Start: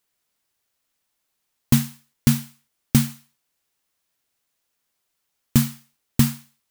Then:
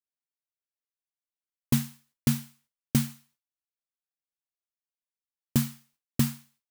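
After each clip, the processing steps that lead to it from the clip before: gate with hold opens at -54 dBFS; gain -7 dB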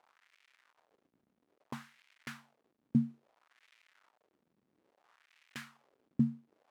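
crackle 270/s -41 dBFS; wah 0.6 Hz 210–2300 Hz, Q 2.1; gain -1 dB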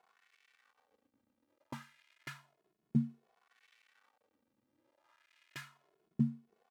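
endless flanger 2.3 ms +0.31 Hz; gain +1.5 dB

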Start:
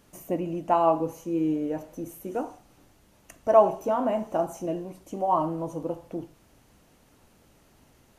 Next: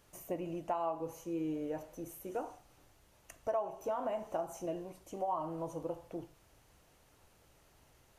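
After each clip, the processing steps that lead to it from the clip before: bell 230 Hz -9.5 dB 0.98 oct; compressor 5:1, threshold -28 dBFS, peak gain reduction 14.5 dB; gain -4.5 dB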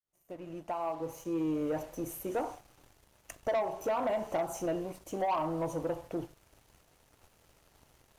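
opening faded in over 1.73 s; sample leveller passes 2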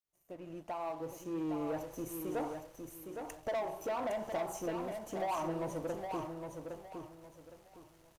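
in parallel at -5 dB: hard clip -35.5 dBFS, distortion -8 dB; on the sum: feedback echo 0.812 s, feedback 28%, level -6 dB; gain -7 dB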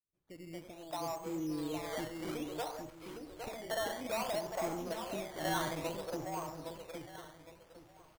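three bands offset in time lows, highs, mids 0.14/0.23 s, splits 450/6000 Hz; decimation with a swept rate 12×, swing 100% 0.59 Hz; gain +1 dB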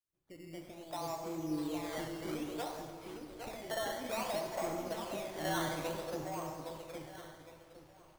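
plate-style reverb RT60 1.9 s, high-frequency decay 0.85×, DRR 5 dB; gain -1.5 dB

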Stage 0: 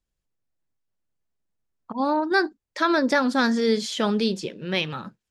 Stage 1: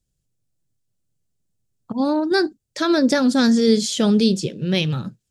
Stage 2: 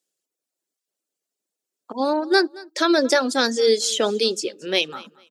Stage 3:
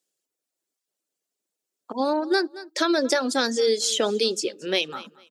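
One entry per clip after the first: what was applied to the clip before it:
graphic EQ 125/1000/2000/8000 Hz +11/-9/-6/+6 dB; gain +5 dB
reverb removal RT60 0.93 s; HPF 340 Hz 24 dB/oct; feedback echo 0.224 s, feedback 24%, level -22 dB; gain +3 dB
compressor 3:1, threshold -19 dBFS, peak gain reduction 6 dB

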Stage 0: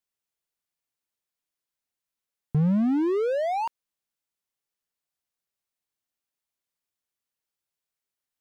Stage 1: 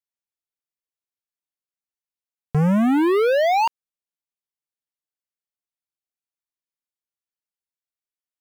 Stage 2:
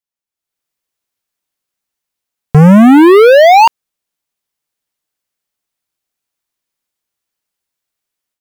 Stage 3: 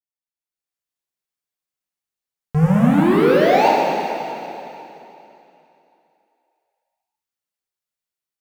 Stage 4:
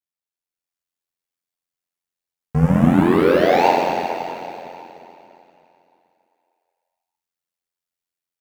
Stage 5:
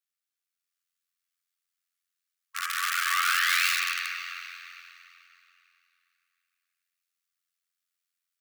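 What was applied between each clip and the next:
sample leveller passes 5
AGC gain up to 12.5 dB; gain +2.5 dB
plate-style reverb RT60 3 s, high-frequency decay 0.95×, DRR -4.5 dB; gain -16 dB
AM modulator 87 Hz, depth 55%; gain +2.5 dB
in parallel at -9 dB: wrapped overs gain 11.5 dB; on the sum: brick-wall FIR high-pass 1100 Hz

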